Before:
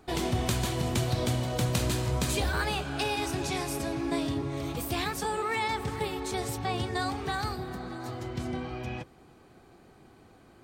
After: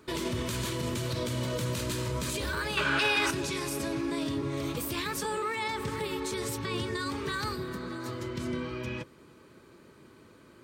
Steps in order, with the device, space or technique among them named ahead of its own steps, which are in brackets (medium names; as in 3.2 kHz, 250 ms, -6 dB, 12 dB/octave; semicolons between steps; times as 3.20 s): PA system with an anti-feedback notch (high-pass 130 Hz 6 dB/octave; Butterworth band-stop 750 Hz, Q 3.4; peak limiter -26 dBFS, peak gain reduction 11 dB); 2.77–3.31 s: peaking EQ 1.7 kHz +12.5 dB 2.6 oct; trim +2.5 dB